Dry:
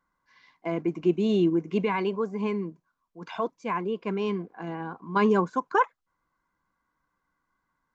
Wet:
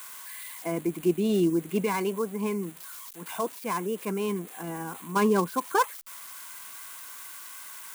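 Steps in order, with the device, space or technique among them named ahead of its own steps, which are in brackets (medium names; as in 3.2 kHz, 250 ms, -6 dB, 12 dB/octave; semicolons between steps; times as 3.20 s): budget class-D amplifier (dead-time distortion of 0.096 ms; zero-crossing glitches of -26.5 dBFS); trim -1 dB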